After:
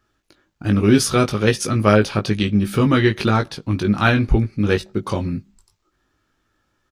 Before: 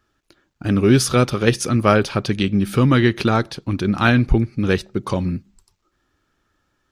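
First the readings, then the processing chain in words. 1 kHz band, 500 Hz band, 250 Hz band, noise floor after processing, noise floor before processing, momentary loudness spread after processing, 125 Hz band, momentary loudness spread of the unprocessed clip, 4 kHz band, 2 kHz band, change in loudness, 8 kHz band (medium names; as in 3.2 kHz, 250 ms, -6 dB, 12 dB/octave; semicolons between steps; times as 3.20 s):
0.0 dB, 0.0 dB, 0.0 dB, -69 dBFS, -70 dBFS, 9 LU, -0.5 dB, 8 LU, 0.0 dB, 0.0 dB, 0.0 dB, 0.0 dB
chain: doubling 19 ms -5 dB; trim -1 dB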